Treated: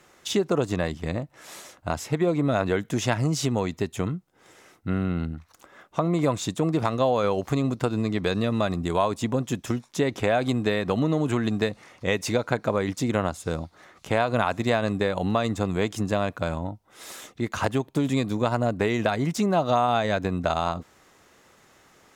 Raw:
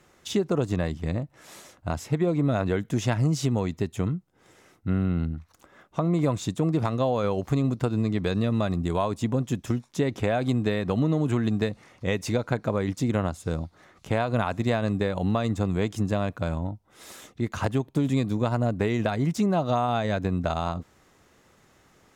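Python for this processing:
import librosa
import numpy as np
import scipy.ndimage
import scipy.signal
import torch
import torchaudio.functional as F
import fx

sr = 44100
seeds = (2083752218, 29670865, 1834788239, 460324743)

y = fx.low_shelf(x, sr, hz=260.0, db=-8.5)
y = F.gain(torch.from_numpy(y), 4.5).numpy()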